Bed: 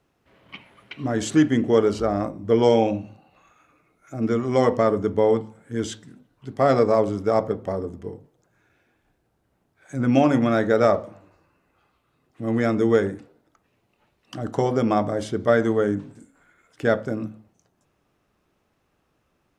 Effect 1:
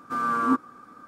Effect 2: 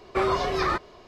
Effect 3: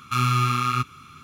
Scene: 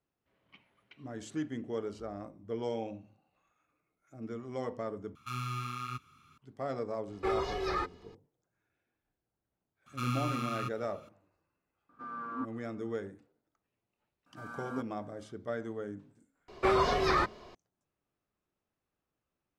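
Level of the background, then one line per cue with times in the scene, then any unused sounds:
bed −18.5 dB
0:05.15: overwrite with 3 −16 dB
0:07.08: mix in 2 −11.5 dB + comb filter 2.4 ms, depth 80%
0:09.86: mix in 3 −13.5 dB
0:11.89: mix in 1 −15 dB + Bessel low-pass filter 2,400 Hz
0:14.26: mix in 1 −16.5 dB + comb filter 1.3 ms, depth 58%
0:16.48: mix in 2 −2.5 dB

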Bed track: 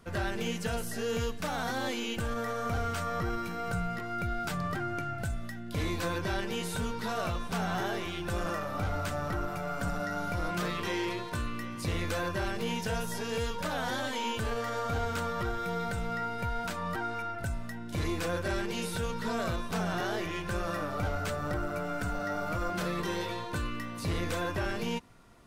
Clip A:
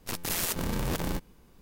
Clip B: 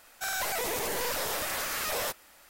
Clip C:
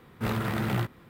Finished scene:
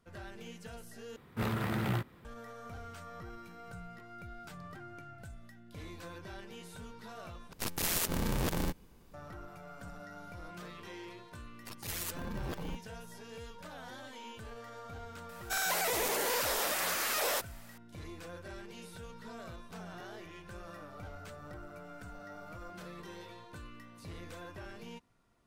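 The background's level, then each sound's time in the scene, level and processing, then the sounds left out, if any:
bed track −14.5 dB
0:01.16: overwrite with C −4.5 dB
0:07.53: overwrite with A −2 dB
0:11.58: mix in A −6 dB + spectral dynamics exaggerated over time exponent 2
0:15.29: mix in B −0.5 dB + high-pass filter 240 Hz 24 dB per octave

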